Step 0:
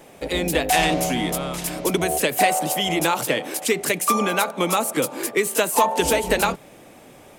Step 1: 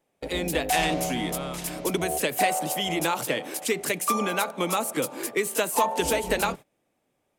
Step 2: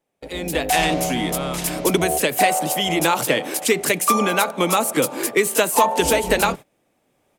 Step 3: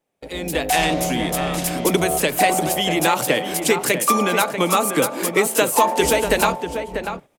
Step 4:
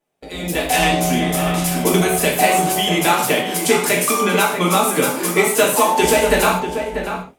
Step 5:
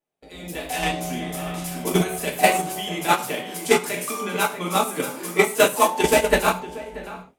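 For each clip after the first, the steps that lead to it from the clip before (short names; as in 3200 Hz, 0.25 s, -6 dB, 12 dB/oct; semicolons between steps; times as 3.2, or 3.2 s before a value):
gate -32 dBFS, range -23 dB; gain -5 dB
AGC gain up to 14 dB; gain -3 dB
outdoor echo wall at 110 m, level -7 dB
non-linear reverb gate 0.18 s falling, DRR -2.5 dB; gain -1.5 dB
gate -13 dBFS, range -11 dB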